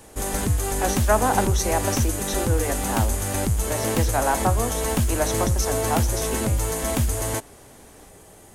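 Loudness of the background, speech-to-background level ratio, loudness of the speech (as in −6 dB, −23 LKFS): −24.0 LKFS, −3.5 dB, −27.5 LKFS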